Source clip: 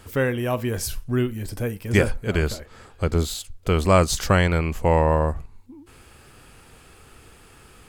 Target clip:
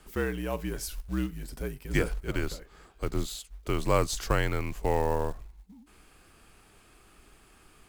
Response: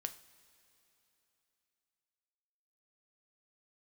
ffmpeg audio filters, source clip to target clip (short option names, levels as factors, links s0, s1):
-af "afreqshift=-57,acrusher=bits=6:mode=log:mix=0:aa=0.000001,volume=0.398"